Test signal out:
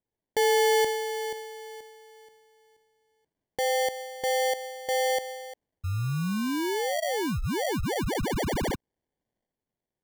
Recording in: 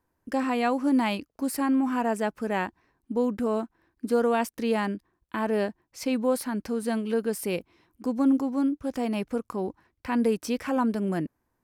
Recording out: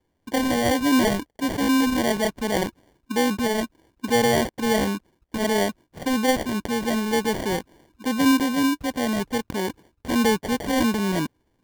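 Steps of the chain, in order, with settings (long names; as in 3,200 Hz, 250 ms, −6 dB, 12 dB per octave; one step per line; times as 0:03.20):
transient designer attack −1 dB, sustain +4 dB
decimation without filtering 34×
level +4 dB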